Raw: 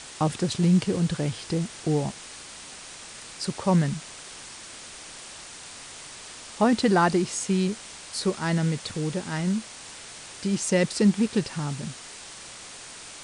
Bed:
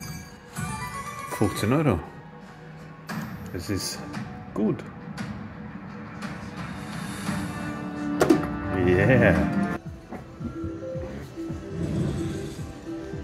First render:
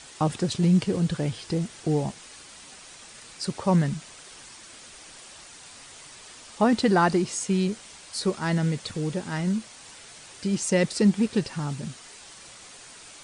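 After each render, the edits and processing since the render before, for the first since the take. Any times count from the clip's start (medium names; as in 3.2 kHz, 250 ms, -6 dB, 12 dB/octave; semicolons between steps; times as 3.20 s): noise reduction 6 dB, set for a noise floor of -43 dBFS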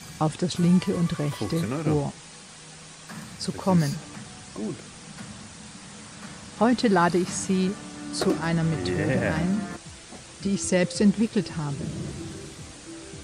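add bed -7.5 dB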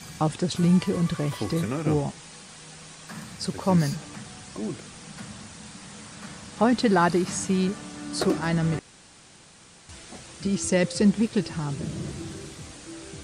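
1.55–2.08 s: band-stop 4.2 kHz; 8.79–9.89 s: room tone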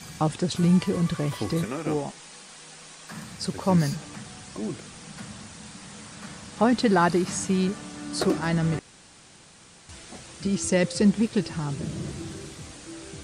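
1.64–3.12 s: peaking EQ 87 Hz -14 dB 1.8 oct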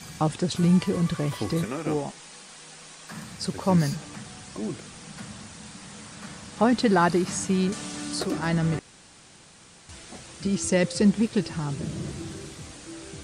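7.72–8.32 s: three bands compressed up and down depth 70%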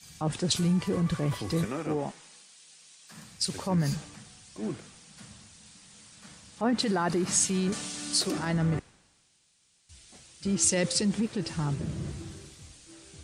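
peak limiter -21 dBFS, peak gain reduction 12 dB; three bands expanded up and down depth 100%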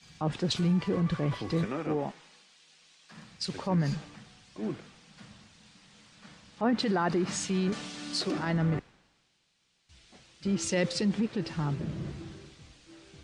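low-pass 4.1 kHz 12 dB/octave; peaking EQ 84 Hz -6.5 dB 0.75 oct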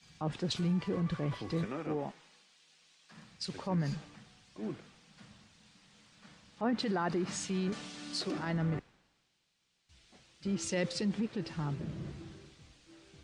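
trim -5 dB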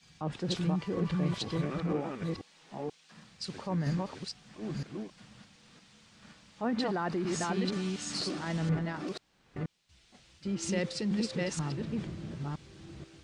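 chunks repeated in reverse 483 ms, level -1 dB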